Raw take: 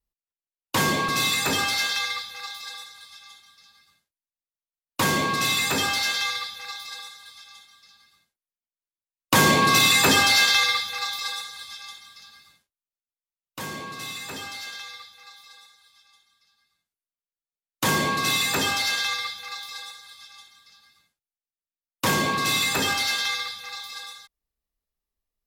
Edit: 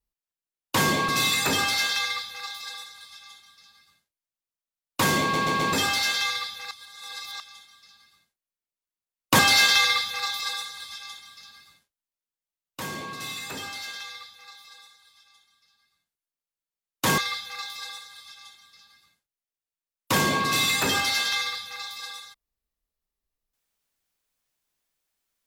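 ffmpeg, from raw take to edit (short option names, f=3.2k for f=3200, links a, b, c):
-filter_complex "[0:a]asplit=9[a][b][c][d][e][f][g][h][i];[a]atrim=end=5.342[j];[b]atrim=start=5.208:end=5.342[k];[c]atrim=start=5.208:end=5.342[l];[d]atrim=start=5.208:end=5.342[m];[e]atrim=start=5.728:end=6.712[n];[f]atrim=start=6.708:end=7.402,asetpts=PTS-STARTPTS,areverse[o];[g]atrim=start=7.398:end=9.392[p];[h]atrim=start=10.178:end=17.972[q];[i]atrim=start=19.108[r];[j][k]acrossfade=d=0.004:c1=hsin:c2=hsin[s];[s][l]acrossfade=d=0.004:c1=hsin:c2=hsin[t];[t][m]acrossfade=d=0.004:c1=hsin:c2=hsin[u];[u][n]acrossfade=d=0.004:c1=hsin:c2=hsin[v];[v][o]acrossfade=d=0.004:c1=hsin:c2=hsin[w];[w][p]acrossfade=d=0.004:c1=hsin:c2=hsin[x];[x][q]acrossfade=d=0.004:c1=hsin:c2=hsin[y];[y][r]acrossfade=d=0.004:c1=hsin:c2=hsin"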